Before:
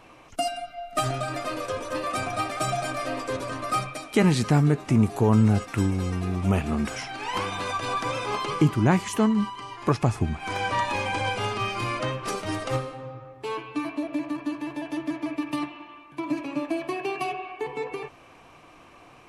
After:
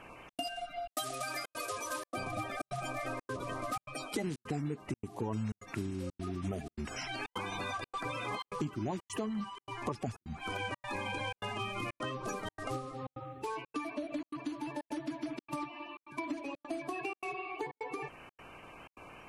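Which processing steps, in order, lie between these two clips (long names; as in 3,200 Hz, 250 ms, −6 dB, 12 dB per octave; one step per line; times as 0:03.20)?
spectral magnitudes quantised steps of 30 dB
0:00.89–0:02.10: spectral tilt +3.5 dB per octave
downward compressor 4 to 1, threshold −36 dBFS, peak gain reduction 17.5 dB
gate pattern "xxx.xxxxx.xx" 155 BPM −60 dB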